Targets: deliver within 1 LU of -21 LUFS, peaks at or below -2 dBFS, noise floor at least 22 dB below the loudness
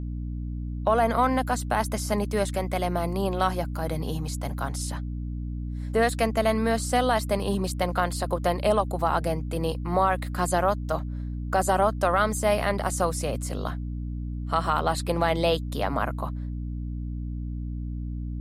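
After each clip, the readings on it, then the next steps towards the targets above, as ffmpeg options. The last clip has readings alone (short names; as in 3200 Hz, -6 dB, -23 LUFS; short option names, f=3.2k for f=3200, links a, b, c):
hum 60 Hz; harmonics up to 300 Hz; hum level -29 dBFS; loudness -27.0 LUFS; peak -10.0 dBFS; loudness target -21.0 LUFS
-> -af "bandreject=f=60:t=h:w=4,bandreject=f=120:t=h:w=4,bandreject=f=180:t=h:w=4,bandreject=f=240:t=h:w=4,bandreject=f=300:t=h:w=4"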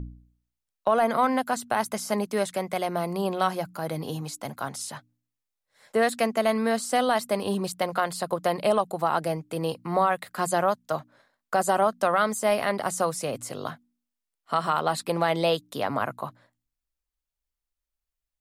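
hum none; loudness -26.5 LUFS; peak -11.0 dBFS; loudness target -21.0 LUFS
-> -af "volume=5.5dB"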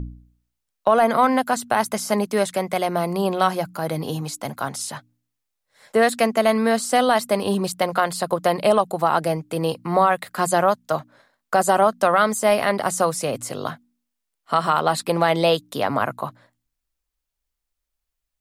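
loudness -21.0 LUFS; peak -5.5 dBFS; noise floor -80 dBFS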